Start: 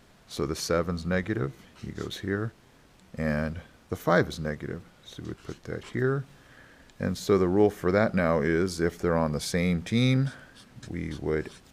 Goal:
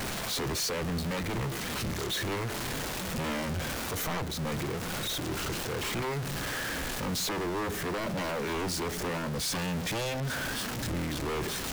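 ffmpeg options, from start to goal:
-filter_complex "[0:a]aeval=exprs='val(0)+0.5*0.0562*sgn(val(0))':c=same,acrossover=split=260[a][b];[a]tremolo=f=2.2:d=0.48[c];[b]alimiter=limit=-16.5dB:level=0:latency=1:release=424[d];[c][d]amix=inputs=2:normalize=0,aeval=exprs='0.0596*(abs(mod(val(0)/0.0596+3,4)-2)-1)':c=same,volume=-2.5dB"

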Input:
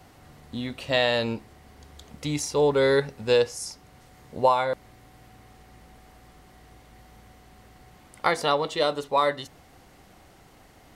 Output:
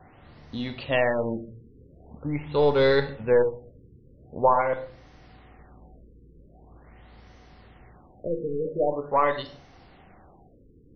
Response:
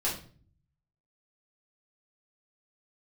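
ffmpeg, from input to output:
-filter_complex "[0:a]aeval=exprs='0.473*(cos(1*acos(clip(val(0)/0.473,-1,1)))-cos(1*PI/2))+0.00944*(cos(8*acos(clip(val(0)/0.473,-1,1)))-cos(8*PI/2))':c=same,asplit=2[a][b];[1:a]atrim=start_sample=2205,adelay=30[c];[b][c]afir=irnorm=-1:irlink=0,volume=-15dB[d];[a][d]amix=inputs=2:normalize=0,afftfilt=real='re*lt(b*sr/1024,500*pow(6400/500,0.5+0.5*sin(2*PI*0.44*pts/sr)))':imag='im*lt(b*sr/1024,500*pow(6400/500,0.5+0.5*sin(2*PI*0.44*pts/sr)))':win_size=1024:overlap=0.75"

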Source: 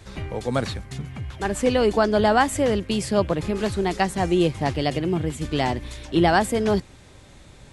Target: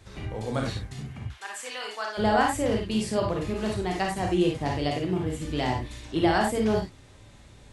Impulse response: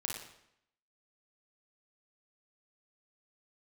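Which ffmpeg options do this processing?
-filter_complex "[0:a]asplit=3[a][b][c];[a]afade=t=out:st=1.27:d=0.02[d];[b]highpass=1.2k,afade=t=in:st=1.27:d=0.02,afade=t=out:st=2.17:d=0.02[e];[c]afade=t=in:st=2.17:d=0.02[f];[d][e][f]amix=inputs=3:normalize=0[g];[1:a]atrim=start_sample=2205,atrim=end_sample=4410[h];[g][h]afir=irnorm=-1:irlink=0,volume=-5dB"

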